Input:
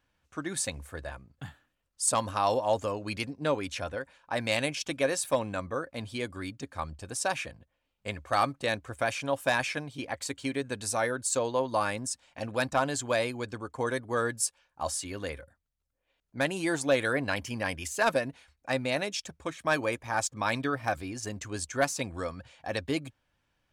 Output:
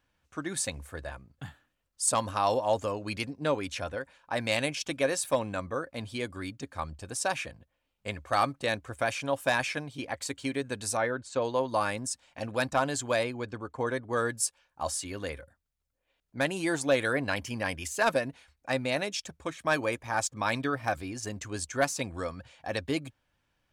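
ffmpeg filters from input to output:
-filter_complex "[0:a]asettb=1/sr,asplit=3[s0][s1][s2];[s0]atrim=end=10.974[s3];[s1]atrim=start=10.97:end=11.42,asetpts=PTS-STARTPTS,afade=t=in:d=0.004:c=qsin,afade=t=out:st=0.446:d=0.004:c=qsin,lowpass=3100[s4];[s2]atrim=start=11.416[s5];[s3][s4]acrossfade=d=0.004:c1=hsin:c2=qsin[s6];[s6][s5]acrossfade=d=0.004:c1=qsin:c2=hsin,asettb=1/sr,asplit=3[s7][s8][s9];[s7]atrim=end=13.234[s10];[s8]atrim=start=13.23:end=14.13,asetpts=PTS-STARTPTS,afade=t=in:d=0.004:c=qsin,afade=t=out:st=0.896:d=0.004:c=qsin,lowpass=f=3100:p=1[s11];[s9]atrim=start=14.126[s12];[s10][s11]acrossfade=d=0.004:c1=hsin:c2=qsin[s13];[s13][s12]acrossfade=d=0.004:c1=qsin:c2=hsin"

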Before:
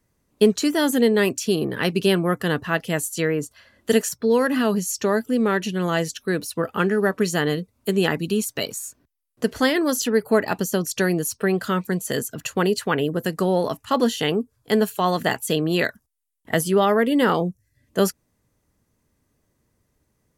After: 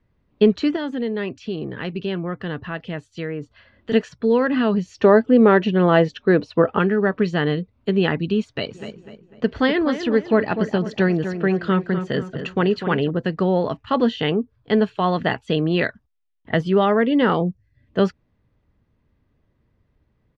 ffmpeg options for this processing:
-filter_complex "[0:a]asettb=1/sr,asplit=3[s0][s1][s2];[s0]atrim=end=0.764[s3];[s1]atrim=start=0.76:end=3.92,asetpts=PTS-STARTPTS,afade=t=in:d=0.004:c=qsin,afade=t=out:st=3.156:d=0.004:c=qsin,acompressor=threshold=0.0141:ratio=1.5:attack=3.2:release=140:knee=1:detection=peak[s4];[s2]atrim=start=3.916[s5];[s3][s4]acrossfade=d=0.004:c1=hsin:c2=qsin[s6];[s6][s5]acrossfade=d=0.004:c1=qsin:c2=hsin,asettb=1/sr,asplit=3[s7][s8][s9];[s7]atrim=end=4.854[s10];[s8]atrim=start=4.85:end=6.79,asetpts=PTS-STARTPTS,afade=t=in:d=0.004:c=qsin,afade=t=out:st=1.936:d=0.004:c=qsin,equalizer=f=580:t=o:w=2.8:g=8.5[s11];[s9]atrim=start=6.786[s12];[s10][s11]acrossfade=d=0.004:c1=hsin:c2=qsin[s13];[s13][s12]acrossfade=d=0.004:c1=qsin:c2=hsin,asplit=3[s14][s15][s16];[s14]afade=t=out:st=8.74:d=0.02[s17];[s15]asplit=2[s18][s19];[s19]adelay=249,lowpass=f=2700:p=1,volume=0.355,asplit=2[s20][s21];[s21]adelay=249,lowpass=f=2700:p=1,volume=0.43,asplit=2[s22][s23];[s23]adelay=249,lowpass=f=2700:p=1,volume=0.43,asplit=2[s24][s25];[s25]adelay=249,lowpass=f=2700:p=1,volume=0.43,asplit=2[s26][s27];[s27]adelay=249,lowpass=f=2700:p=1,volume=0.43[s28];[s18][s20][s22][s24][s26][s28]amix=inputs=6:normalize=0,afade=t=in:st=8.74:d=0.02,afade=t=out:st=13.09:d=0.02[s29];[s16]afade=t=in:st=13.09:d=0.02[s30];[s17][s29][s30]amix=inputs=3:normalize=0,lowpass=f=3700:w=0.5412,lowpass=f=3700:w=1.3066,lowshelf=f=140:g=8"

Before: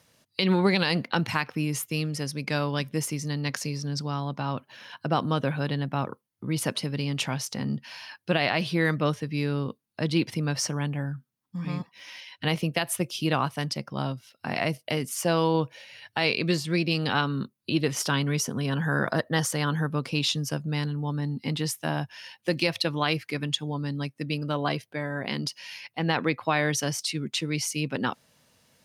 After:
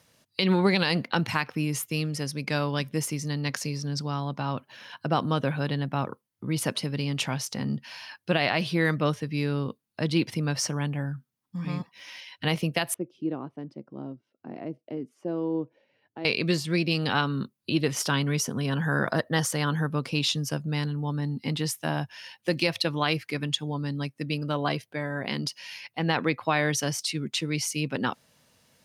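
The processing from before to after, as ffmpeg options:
-filter_complex "[0:a]asettb=1/sr,asplit=3[s0][s1][s2];[s0]atrim=end=12.944[s3];[s1]atrim=start=12.94:end=16.25,asetpts=PTS-STARTPTS,afade=t=in:d=0.004:c=qsin,afade=t=out:st=3.306:d=0.004:c=qsin,bandpass=f=320:t=q:w=2.3[s4];[s2]atrim=start=16.246[s5];[s3][s4]acrossfade=d=0.004:c1=hsin:c2=qsin[s6];[s6][s5]acrossfade=d=0.004:c1=qsin:c2=hsin"

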